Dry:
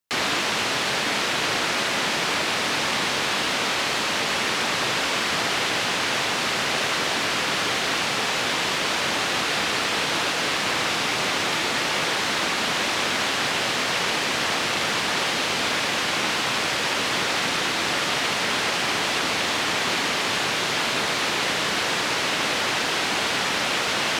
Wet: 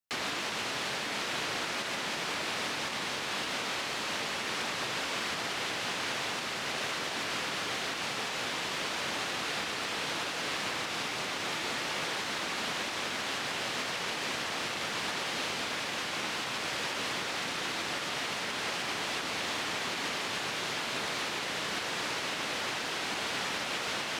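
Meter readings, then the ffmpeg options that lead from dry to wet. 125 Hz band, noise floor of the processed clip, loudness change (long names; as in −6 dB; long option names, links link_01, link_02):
−10.5 dB, −36 dBFS, −10.5 dB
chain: -af "alimiter=limit=-15.5dB:level=0:latency=1:release=156,volume=-8.5dB"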